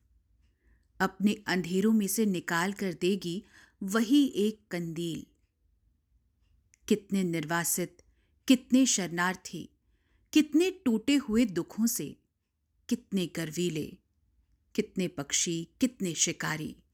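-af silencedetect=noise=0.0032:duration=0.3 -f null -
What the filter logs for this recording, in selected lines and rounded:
silence_start: 0.00
silence_end: 1.00 | silence_duration: 1.00
silence_start: 5.24
silence_end: 6.74 | silence_duration: 1.50
silence_start: 8.00
silence_end: 8.48 | silence_duration: 0.48
silence_start: 9.65
silence_end: 10.33 | silence_duration: 0.68
silence_start: 12.13
silence_end: 12.89 | silence_duration: 0.76
silence_start: 13.95
silence_end: 14.75 | silence_duration: 0.80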